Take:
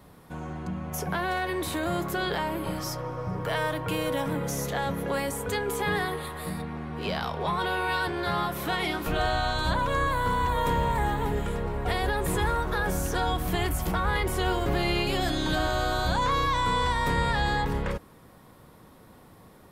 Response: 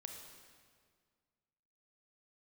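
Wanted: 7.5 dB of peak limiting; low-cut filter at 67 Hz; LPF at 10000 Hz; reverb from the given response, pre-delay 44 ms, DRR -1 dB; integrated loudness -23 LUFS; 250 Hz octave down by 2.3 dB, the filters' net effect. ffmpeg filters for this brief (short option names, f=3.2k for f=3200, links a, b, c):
-filter_complex "[0:a]highpass=67,lowpass=10k,equalizer=f=250:t=o:g=-3.5,alimiter=limit=-21.5dB:level=0:latency=1,asplit=2[a][b];[1:a]atrim=start_sample=2205,adelay=44[c];[b][c]afir=irnorm=-1:irlink=0,volume=5dB[d];[a][d]amix=inputs=2:normalize=0,volume=4.5dB"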